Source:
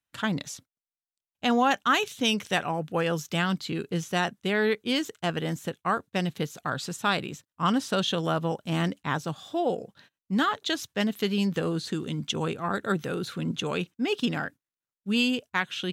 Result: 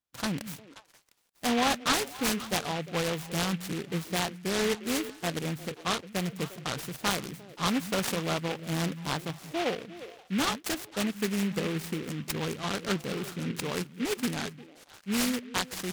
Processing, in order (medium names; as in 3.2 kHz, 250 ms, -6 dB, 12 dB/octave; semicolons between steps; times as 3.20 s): on a send: repeats whose band climbs or falls 176 ms, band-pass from 160 Hz, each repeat 1.4 oct, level -9 dB; on the sum: delay time shaken by noise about 2.1 kHz, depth 0.13 ms; trim -3.5 dB